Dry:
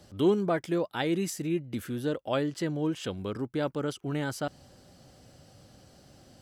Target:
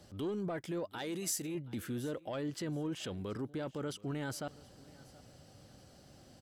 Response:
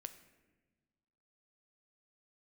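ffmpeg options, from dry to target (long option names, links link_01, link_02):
-filter_complex "[0:a]asoftclip=type=tanh:threshold=-18.5dB,alimiter=level_in=4.5dB:limit=-24dB:level=0:latency=1:release=13,volume=-4.5dB,asettb=1/sr,asplit=3[link_01][link_02][link_03];[link_01]atrim=end=0.984[link_04];[link_02]atrim=start=0.98:end=1.55,asetpts=PTS-STARTPTS,afade=type=in:duration=0.004:curve=qsin,afade=type=out:start_time=0.566:duration=0.004:curve=qsin,bass=frequency=250:gain=-6,treble=frequency=4000:gain=8[link_05];[link_03]atrim=start=1.546[link_06];[link_04][link_05]acrossfade=duration=0.004:curve1=hsin:curve2=qsin[link_07];[link_07][link_06]acrossfade=duration=0.004:curve1=qsin:curve2=hsin,asplit=2[link_08][link_09];[link_09]aecho=0:1:727|1454:0.0794|0.023[link_10];[link_08][link_10]amix=inputs=2:normalize=0,volume=-3dB"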